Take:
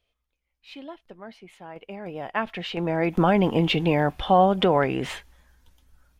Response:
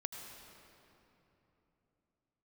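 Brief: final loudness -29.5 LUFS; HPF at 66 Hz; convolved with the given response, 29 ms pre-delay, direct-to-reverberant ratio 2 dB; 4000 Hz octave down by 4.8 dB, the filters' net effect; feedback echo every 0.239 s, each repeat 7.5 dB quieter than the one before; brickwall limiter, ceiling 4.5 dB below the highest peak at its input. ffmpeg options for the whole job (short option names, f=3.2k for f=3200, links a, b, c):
-filter_complex "[0:a]highpass=66,equalizer=f=4k:t=o:g=-7,alimiter=limit=-12.5dB:level=0:latency=1,aecho=1:1:239|478|717|956|1195:0.422|0.177|0.0744|0.0312|0.0131,asplit=2[a][b];[1:a]atrim=start_sample=2205,adelay=29[c];[b][c]afir=irnorm=-1:irlink=0,volume=-1dB[d];[a][d]amix=inputs=2:normalize=0,volume=-8dB"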